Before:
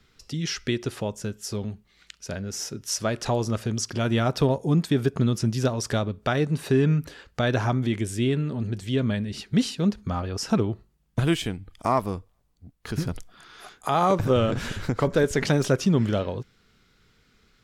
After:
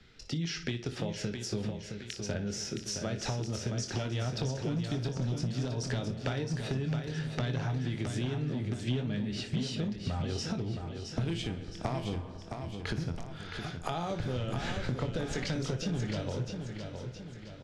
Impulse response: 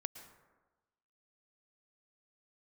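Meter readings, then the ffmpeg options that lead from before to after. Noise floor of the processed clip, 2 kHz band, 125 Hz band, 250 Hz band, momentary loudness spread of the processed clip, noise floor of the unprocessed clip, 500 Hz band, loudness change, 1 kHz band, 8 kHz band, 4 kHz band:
−46 dBFS, −8.0 dB, −7.0 dB, −9.5 dB, 7 LU, −64 dBFS, −11.5 dB, −9.5 dB, −12.5 dB, −7.5 dB, −5.5 dB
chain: -filter_complex "[0:a]asplit=2[link_01][link_02];[1:a]atrim=start_sample=2205[link_03];[link_02][link_03]afir=irnorm=-1:irlink=0,volume=-6.5dB[link_04];[link_01][link_04]amix=inputs=2:normalize=0,acrossover=split=150|3000[link_05][link_06][link_07];[link_06]acompressor=threshold=-26dB:ratio=4[link_08];[link_05][link_08][link_07]amix=inputs=3:normalize=0,equalizer=frequency=1100:width=4.1:gain=-8.5,asplit=2[link_09][link_10];[link_10]aecho=0:1:24|59:0.398|0.224[link_11];[link_09][link_11]amix=inputs=2:normalize=0,asoftclip=type=hard:threshold=-17dB,acompressor=threshold=-31dB:ratio=6,lowpass=5300,aecho=1:1:667|1334|2001|2668|3335|4002:0.473|0.222|0.105|0.0491|0.0231|0.0109"

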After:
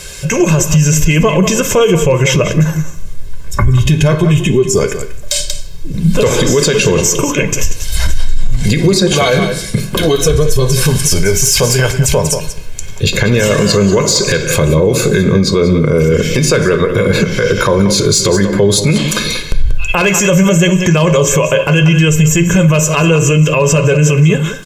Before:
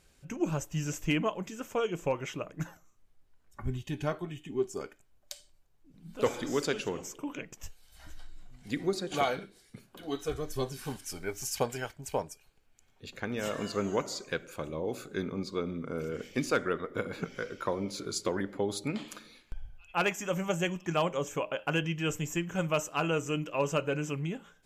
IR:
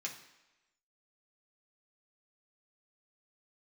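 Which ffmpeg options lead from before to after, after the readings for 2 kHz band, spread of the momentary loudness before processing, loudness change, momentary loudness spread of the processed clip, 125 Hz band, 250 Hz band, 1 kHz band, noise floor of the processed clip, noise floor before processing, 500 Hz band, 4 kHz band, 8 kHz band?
+21.0 dB, 14 LU, +22.5 dB, 8 LU, +27.5 dB, +22.5 dB, +16.0 dB, −22 dBFS, −65 dBFS, +21.0 dB, +24.0 dB, +28.0 dB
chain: -filter_complex "[0:a]acrossover=split=310|4100[link_01][link_02][link_03];[link_01]dynaudnorm=framelen=200:gausssize=7:maxgain=12dB[link_04];[link_03]asoftclip=type=tanh:threshold=-33.5dB[link_05];[link_04][link_02][link_05]amix=inputs=3:normalize=0,highshelf=frequency=12000:gain=-11,acompressor=threshold=-36dB:ratio=3,highshelf=frequency=3600:gain=11,aecho=1:1:1.9:0.65,aecho=1:1:186:0.2,asplit=2[link_06][link_07];[1:a]atrim=start_sample=2205[link_08];[link_07][link_08]afir=irnorm=-1:irlink=0,volume=-4.5dB[link_09];[link_06][link_09]amix=inputs=2:normalize=0,alimiter=level_in=29.5dB:limit=-1dB:release=50:level=0:latency=1,volume=-1dB"

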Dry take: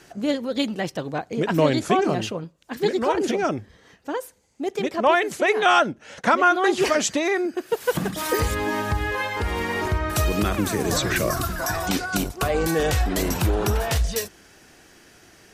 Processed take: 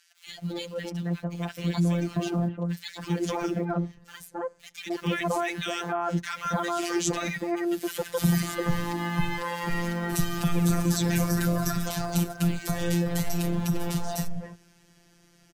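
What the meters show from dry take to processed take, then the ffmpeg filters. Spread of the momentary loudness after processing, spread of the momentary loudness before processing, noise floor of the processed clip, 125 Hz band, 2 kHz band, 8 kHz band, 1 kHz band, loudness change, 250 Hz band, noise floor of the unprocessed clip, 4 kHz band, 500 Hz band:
11 LU, 9 LU, −60 dBFS, +0.5 dB, −9.0 dB, −4.5 dB, −9.5 dB, −5.5 dB, −1.5 dB, −54 dBFS, −6.5 dB, −9.5 dB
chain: -filter_complex "[0:a]lowshelf=frequency=240:width_type=q:width=1.5:gain=7,asplit=2[link_01][link_02];[link_02]acrusher=bits=5:mix=0:aa=0.000001,volume=-11.5dB[link_03];[link_01][link_03]amix=inputs=2:normalize=0,acrossover=split=1600[link_04][link_05];[link_04]adelay=270[link_06];[link_06][link_05]amix=inputs=2:normalize=0,afftfilt=real='hypot(re,im)*cos(PI*b)':imag='0':win_size=1024:overlap=0.75,acrossover=split=160|6100[link_07][link_08][link_09];[link_08]alimiter=limit=-17.5dB:level=0:latency=1[link_10];[link_07][link_10][link_09]amix=inputs=3:normalize=0,dynaudnorm=framelen=210:gausssize=31:maxgain=4.5dB,volume=-5.5dB"

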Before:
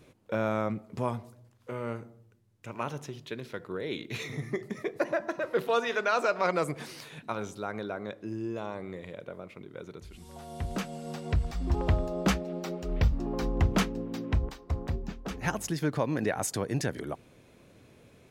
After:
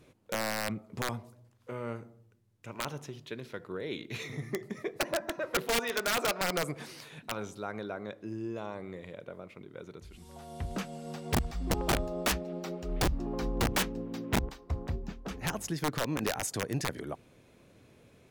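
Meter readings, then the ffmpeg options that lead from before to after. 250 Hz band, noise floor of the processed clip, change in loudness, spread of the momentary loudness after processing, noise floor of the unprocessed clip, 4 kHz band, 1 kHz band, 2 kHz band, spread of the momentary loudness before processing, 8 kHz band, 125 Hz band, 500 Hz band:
−3.0 dB, −61 dBFS, −2.0 dB, 15 LU, −59 dBFS, +4.5 dB, −2.5 dB, 0.0 dB, 15 LU, +3.5 dB, −5.0 dB, −3.5 dB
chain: -af "aeval=exprs='(mod(9.44*val(0)+1,2)-1)/9.44':channel_layout=same,volume=-2.5dB" -ar 44100 -c:a libmp3lame -b:a 320k

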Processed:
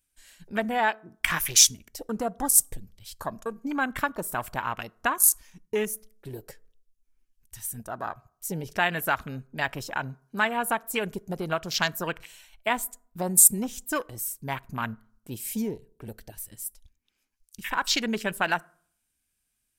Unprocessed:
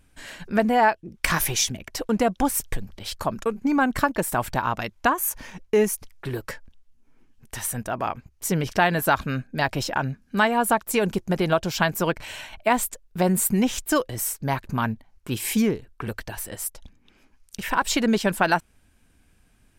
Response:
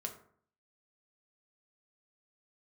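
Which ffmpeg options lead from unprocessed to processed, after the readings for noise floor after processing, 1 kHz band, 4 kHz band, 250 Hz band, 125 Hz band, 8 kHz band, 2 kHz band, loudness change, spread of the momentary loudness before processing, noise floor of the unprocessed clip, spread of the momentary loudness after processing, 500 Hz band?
−78 dBFS, −6.0 dB, +0.5 dB, −9.0 dB, −9.0 dB, +5.0 dB, −3.0 dB, −1.5 dB, 12 LU, −61 dBFS, 19 LU, −8.0 dB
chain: -filter_complex "[0:a]afwtdn=0.0282,crystalizer=i=8:c=0,asplit=2[link_01][link_02];[1:a]atrim=start_sample=2205[link_03];[link_02][link_03]afir=irnorm=-1:irlink=0,volume=-15dB[link_04];[link_01][link_04]amix=inputs=2:normalize=0,volume=-10.5dB"

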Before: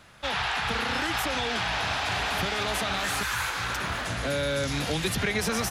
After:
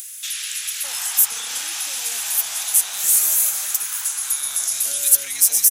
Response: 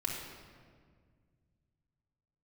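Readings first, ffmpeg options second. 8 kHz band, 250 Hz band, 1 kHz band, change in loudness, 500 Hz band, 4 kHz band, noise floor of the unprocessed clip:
+20.0 dB, below −20 dB, −10.5 dB, +9.0 dB, below −15 dB, +2.0 dB, −33 dBFS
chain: -filter_complex "[0:a]aderivative,aexciter=amount=5.1:drive=5:freq=6200,asplit=2[link_01][link_02];[link_02]acompressor=mode=upward:threshold=-25dB:ratio=2.5,volume=2.5dB[link_03];[link_01][link_03]amix=inputs=2:normalize=0,acrossover=split=1700[link_04][link_05];[link_04]adelay=610[link_06];[link_06][link_05]amix=inputs=2:normalize=0,volume=-1dB"

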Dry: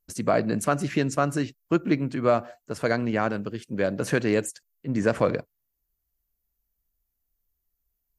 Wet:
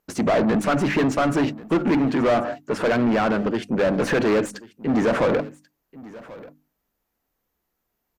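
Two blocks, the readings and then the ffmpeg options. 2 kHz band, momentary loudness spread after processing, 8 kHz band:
+4.5 dB, 9 LU, −1.5 dB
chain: -filter_complex "[0:a]equalizer=frequency=220:width=0.74:gain=5.5,bandreject=frequency=50:width_type=h:width=6,bandreject=frequency=100:width_type=h:width=6,bandreject=frequency=150:width_type=h:width=6,bandreject=frequency=200:width_type=h:width=6,bandreject=frequency=250:width_type=h:width=6,bandreject=frequency=300:width_type=h:width=6,asplit=2[link_01][link_02];[link_02]highpass=frequency=720:poles=1,volume=29dB,asoftclip=type=tanh:threshold=-8.5dB[link_03];[link_01][link_03]amix=inputs=2:normalize=0,lowpass=frequency=1800:poles=1,volume=-6dB,asplit=2[link_04][link_05];[link_05]adynamicsmooth=sensitivity=4:basefreq=2700,volume=-5.5dB[link_06];[link_04][link_06]amix=inputs=2:normalize=0,aecho=1:1:1086:0.1,volume=-7dB" -ar 48000 -c:a libopus -b:a 256k

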